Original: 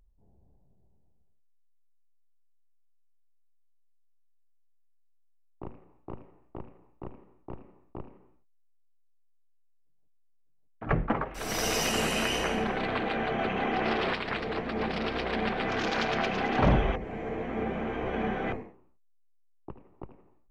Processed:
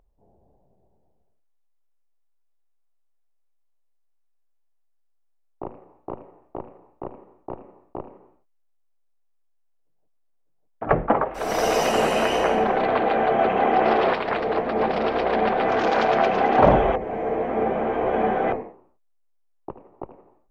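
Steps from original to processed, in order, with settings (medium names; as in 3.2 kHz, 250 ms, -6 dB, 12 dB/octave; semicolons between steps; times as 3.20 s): peaking EQ 650 Hz +15 dB 2.4 oct; trim -2 dB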